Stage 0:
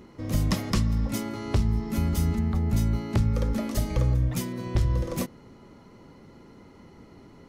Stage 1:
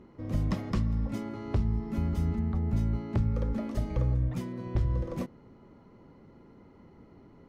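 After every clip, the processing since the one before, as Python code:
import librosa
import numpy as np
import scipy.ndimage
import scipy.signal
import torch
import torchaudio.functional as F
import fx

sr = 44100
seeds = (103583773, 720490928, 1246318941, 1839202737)

y = fx.lowpass(x, sr, hz=1400.0, slope=6)
y = y * librosa.db_to_amplitude(-4.0)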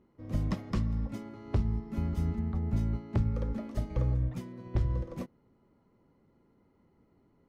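y = fx.upward_expand(x, sr, threshold_db=-48.0, expansion=1.5)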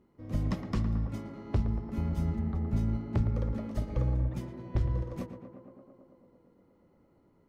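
y = fx.echo_tape(x, sr, ms=114, feedback_pct=89, wet_db=-7, lp_hz=1900.0, drive_db=24.0, wow_cents=39)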